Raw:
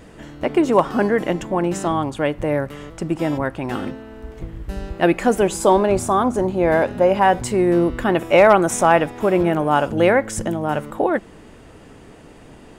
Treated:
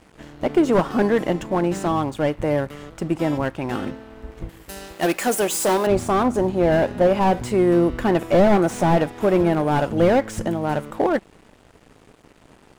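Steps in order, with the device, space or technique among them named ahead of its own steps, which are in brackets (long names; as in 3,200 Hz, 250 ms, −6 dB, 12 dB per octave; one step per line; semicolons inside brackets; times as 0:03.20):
early transistor amplifier (dead-zone distortion −43.5 dBFS; slew-rate limiting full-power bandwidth 130 Hz)
0:04.49–0:05.87: RIAA equalisation recording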